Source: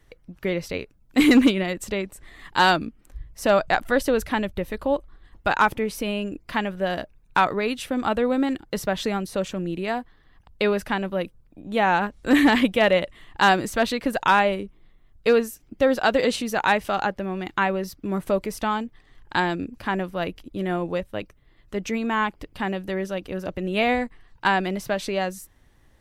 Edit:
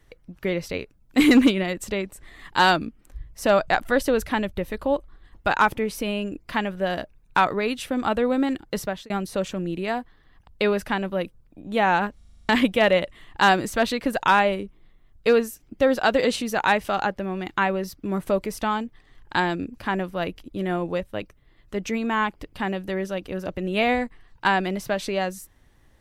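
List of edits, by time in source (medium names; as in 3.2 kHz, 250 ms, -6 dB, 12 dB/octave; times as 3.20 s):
8.79–9.10 s: fade out
12.17 s: stutter in place 0.04 s, 8 plays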